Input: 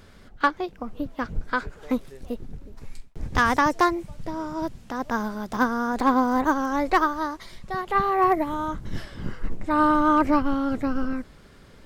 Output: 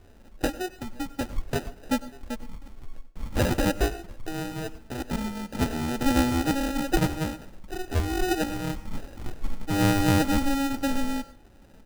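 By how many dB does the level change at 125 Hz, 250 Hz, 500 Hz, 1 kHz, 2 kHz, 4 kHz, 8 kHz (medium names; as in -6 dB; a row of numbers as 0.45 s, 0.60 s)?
+8.0 dB, -1.5 dB, -3.0 dB, -10.0 dB, -5.5 dB, +5.0 dB, +8.5 dB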